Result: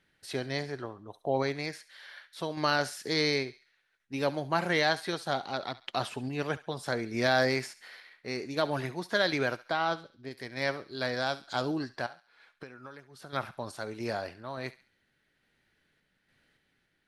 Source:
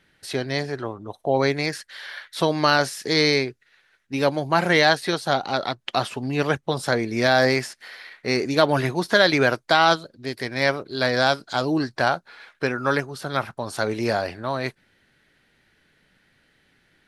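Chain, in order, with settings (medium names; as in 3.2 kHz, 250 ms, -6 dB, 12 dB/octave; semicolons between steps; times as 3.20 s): 9.66–10.31 s: treble shelf 3.5 kHz -10 dB; 12.06–13.33 s: compression 16:1, threshold -34 dBFS, peak gain reduction 19 dB; random-step tremolo; thinning echo 69 ms, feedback 42%, high-pass 1.1 kHz, level -15 dB; trim -7 dB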